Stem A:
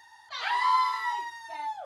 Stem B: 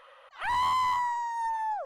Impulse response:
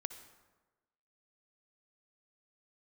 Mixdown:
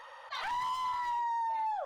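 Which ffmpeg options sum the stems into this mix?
-filter_complex "[0:a]lowpass=f=2.5k:p=1,lowshelf=f=430:g=-6.5,asoftclip=type=hard:threshold=-32dB,volume=2dB[a];[1:a]equalizer=f=920:w=6.2:g=14,acompressor=threshold=-26dB:ratio=6,volume=0dB[b];[a][b]amix=inputs=2:normalize=0,alimiter=level_in=5dB:limit=-24dB:level=0:latency=1,volume=-5dB"

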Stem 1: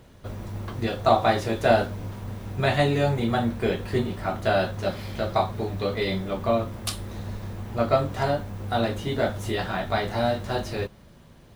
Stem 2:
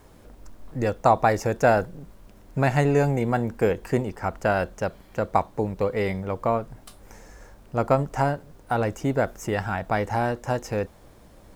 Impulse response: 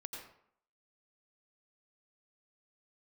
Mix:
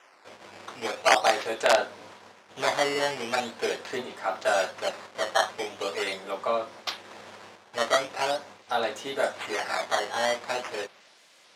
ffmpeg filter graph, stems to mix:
-filter_complex "[0:a]aeval=exprs='(mod(2.82*val(0)+1,2)-1)/2.82':c=same,volume=0dB[a];[1:a]aemphasis=mode=production:type=75fm,alimiter=limit=-11.5dB:level=0:latency=1:release=343,volume=-6.5dB,asplit=2[b][c];[c]apad=whole_len=509404[d];[a][d]sidechaingate=range=-33dB:threshold=-51dB:ratio=16:detection=peak[e];[e][b]amix=inputs=2:normalize=0,acrusher=samples=10:mix=1:aa=0.000001:lfo=1:lforange=16:lforate=0.42,highpass=560,lowpass=6.6k"

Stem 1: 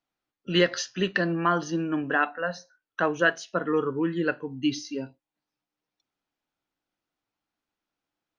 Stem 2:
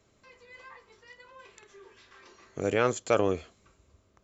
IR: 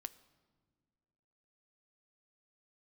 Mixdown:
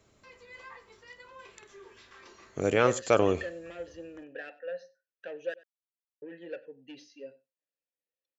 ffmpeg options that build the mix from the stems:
-filter_complex "[0:a]bass=f=250:g=4,treble=f=4k:g=9,asoftclip=type=tanh:threshold=-21.5dB,asplit=3[a][b][c];[a]bandpass=f=530:t=q:w=8,volume=0dB[d];[b]bandpass=f=1.84k:t=q:w=8,volume=-6dB[e];[c]bandpass=f=2.48k:t=q:w=8,volume=-9dB[f];[d][e][f]amix=inputs=3:normalize=0,adelay=2250,volume=-1.5dB,asplit=3[g][h][i];[g]atrim=end=5.54,asetpts=PTS-STARTPTS,afade=t=out:st=5.536:d=0.004:c=hsin[j];[h]atrim=start=5.54:end=6.22,asetpts=PTS-STARTPTS,volume=0[k];[i]atrim=start=6.22,asetpts=PTS-STARTPTS,afade=t=in:d=0.004:c=hsin[l];[j][k][l]concat=n=3:v=0:a=1,asplit=2[m][n];[n]volume=-21dB[o];[1:a]volume=1.5dB,asplit=2[p][q];[q]volume=-20dB[r];[o][r]amix=inputs=2:normalize=0,aecho=0:1:95:1[s];[m][p][s]amix=inputs=3:normalize=0"

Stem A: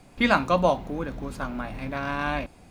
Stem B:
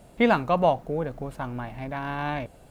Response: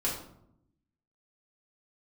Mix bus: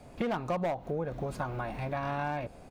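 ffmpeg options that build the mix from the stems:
-filter_complex "[0:a]volume=-3.5dB[a];[1:a]lowpass=1.4k,lowshelf=f=350:g=-2.5,adelay=8.8,volume=1dB,asplit=2[b][c];[c]apad=whole_len=119286[d];[a][d]sidechaincompress=threshold=-31dB:ratio=4:attack=10:release=170[e];[e][b]amix=inputs=2:normalize=0,asoftclip=type=hard:threshold=-17.5dB,acompressor=threshold=-29dB:ratio=6"

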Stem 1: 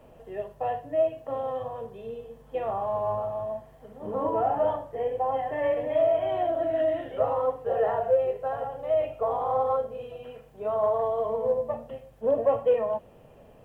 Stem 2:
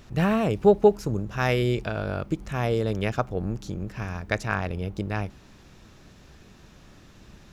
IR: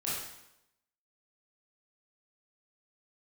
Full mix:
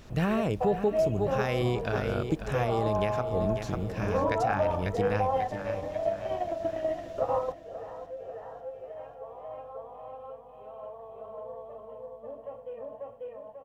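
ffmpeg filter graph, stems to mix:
-filter_complex "[0:a]volume=2dB,asplit=2[a][b];[b]volume=-20.5dB[c];[1:a]volume=-1dB,asplit=3[d][e][f];[e]volume=-11dB[g];[f]apad=whole_len=601713[h];[a][h]sidechaingate=range=-21dB:threshold=-49dB:ratio=16:detection=peak[i];[c][g]amix=inputs=2:normalize=0,aecho=0:1:542|1084|1626|2168|2710|3252|3794:1|0.48|0.23|0.111|0.0531|0.0255|0.0122[j];[i][d][j]amix=inputs=3:normalize=0,alimiter=limit=-17dB:level=0:latency=1:release=215"

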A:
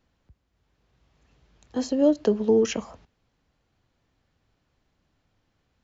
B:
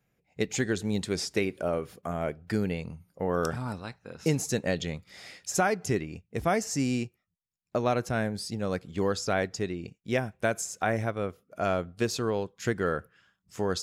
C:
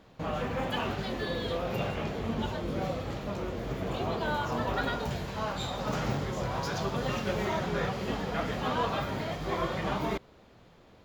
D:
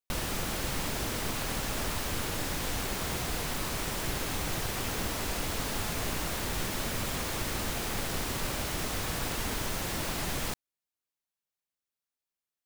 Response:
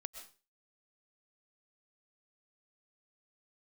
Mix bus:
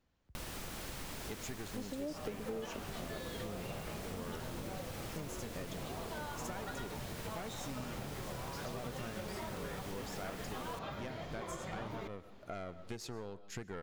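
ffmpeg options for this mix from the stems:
-filter_complex "[0:a]volume=-9.5dB,asplit=2[a][b];[b]volume=-4.5dB[c];[1:a]aeval=exprs='(tanh(14.1*val(0)+0.6)-tanh(0.6))/14.1':c=same,adelay=900,volume=-7.5dB,asplit=2[d][e];[e]volume=-3.5dB[f];[2:a]adelay=1900,volume=-5dB,asplit=2[g][h];[h]volume=-7.5dB[i];[3:a]adelay=250,volume=-7dB[j];[4:a]atrim=start_sample=2205[k];[c][f][i]amix=inputs=3:normalize=0[l];[l][k]afir=irnorm=-1:irlink=0[m];[a][d][g][j][m]amix=inputs=5:normalize=0,acompressor=threshold=-41dB:ratio=4"

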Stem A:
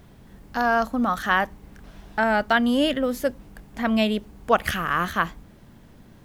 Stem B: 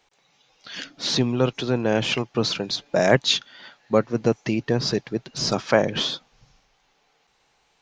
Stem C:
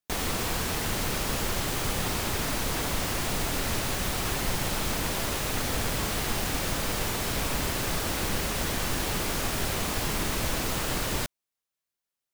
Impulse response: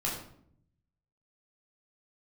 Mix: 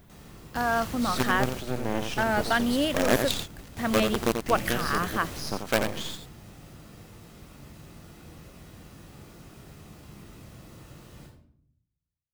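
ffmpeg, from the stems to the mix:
-filter_complex "[0:a]highshelf=f=11k:g=9.5,volume=-5dB,asplit=2[a][b];[1:a]adynamicequalizer=threshold=0.02:dfrequency=280:dqfactor=1.8:tfrequency=280:tqfactor=1.8:attack=5:release=100:ratio=0.375:range=1.5:mode=boostabove:tftype=bell,acrusher=bits=3:dc=4:mix=0:aa=0.000001,volume=-7.5dB,asplit=2[c][d];[d]volume=-6.5dB[e];[2:a]highpass=49,acrossover=split=400[f][g];[g]acompressor=threshold=-35dB:ratio=6[h];[f][h]amix=inputs=2:normalize=0,volume=-6.5dB,asplit=2[i][j];[j]volume=-16dB[k];[b]apad=whole_len=544145[l];[i][l]sidechaingate=range=-33dB:threshold=-43dB:ratio=16:detection=peak[m];[3:a]atrim=start_sample=2205[n];[k][n]afir=irnorm=-1:irlink=0[o];[e]aecho=0:1:87:1[p];[a][c][m][o][p]amix=inputs=5:normalize=0"

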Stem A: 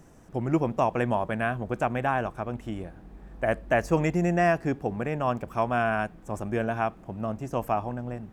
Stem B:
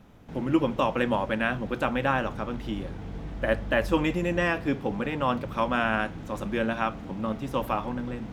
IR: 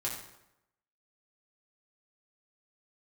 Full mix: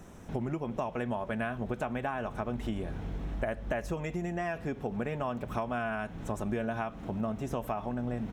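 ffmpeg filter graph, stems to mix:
-filter_complex "[0:a]acompressor=threshold=-32dB:ratio=12,volume=2dB,asplit=2[a][b];[1:a]acompressor=threshold=-34dB:ratio=6,adelay=1.5,volume=0dB[c];[b]apad=whole_len=367285[d];[c][d]sidechaincompress=threshold=-36dB:ratio=8:attack=7.8:release=107[e];[a][e]amix=inputs=2:normalize=0,bandreject=f=4.7k:w=15"

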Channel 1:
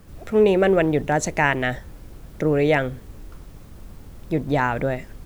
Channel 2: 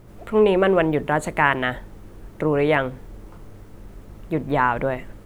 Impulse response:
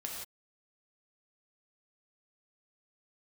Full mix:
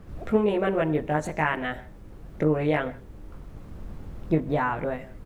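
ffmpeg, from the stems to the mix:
-filter_complex "[0:a]lowpass=f=1.6k:p=1,volume=1.5dB,asplit=2[a][b];[b]volume=-19dB[c];[1:a]highpass=53,adelay=20,volume=-9dB,asplit=2[d][e];[e]apad=whole_len=231841[f];[a][f]sidechaincompress=threshold=-33dB:ratio=8:attack=16:release=1160[g];[2:a]atrim=start_sample=2205[h];[c][h]afir=irnorm=-1:irlink=0[i];[g][d][i]amix=inputs=3:normalize=0"

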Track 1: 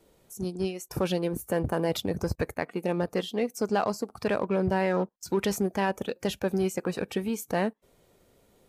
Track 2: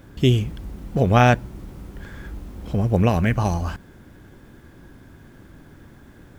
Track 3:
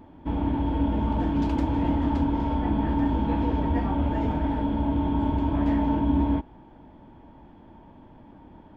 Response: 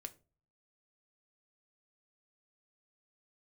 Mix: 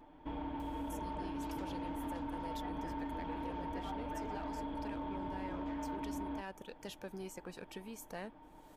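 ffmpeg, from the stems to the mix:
-filter_complex "[0:a]acompressor=mode=upward:threshold=-29dB:ratio=2.5,tiltshelf=f=970:g=-3,adelay=600,volume=-16dB[a];[2:a]equalizer=f=140:t=o:w=2.3:g=-12.5,aecho=1:1:6.6:0.5,asoftclip=type=tanh:threshold=-22.5dB,volume=-5.5dB[b];[a][b]amix=inputs=2:normalize=0,acompressor=threshold=-38dB:ratio=6"

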